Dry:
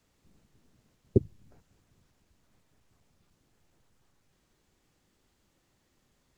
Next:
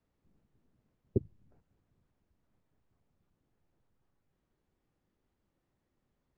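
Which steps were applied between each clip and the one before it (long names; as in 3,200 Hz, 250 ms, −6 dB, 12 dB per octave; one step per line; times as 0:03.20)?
low-pass filter 1,200 Hz 6 dB per octave
level −7 dB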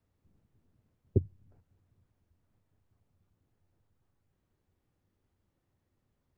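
parametric band 92 Hz +10 dB 0.63 octaves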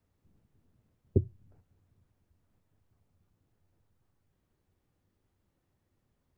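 flanger 1.6 Hz, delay 3.8 ms, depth 2.8 ms, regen −88%
level +6 dB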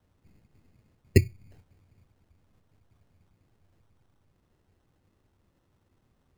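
decimation without filtering 19×
level +7 dB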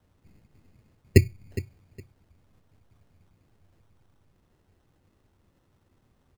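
repeating echo 412 ms, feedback 23%, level −16 dB
level +3 dB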